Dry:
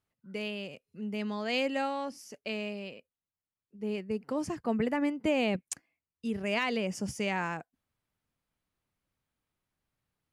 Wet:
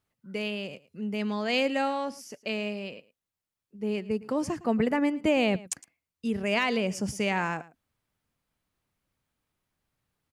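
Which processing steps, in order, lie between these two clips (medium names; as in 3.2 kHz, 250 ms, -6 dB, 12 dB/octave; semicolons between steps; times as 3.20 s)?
delay 110 ms -19.5 dB; trim +4 dB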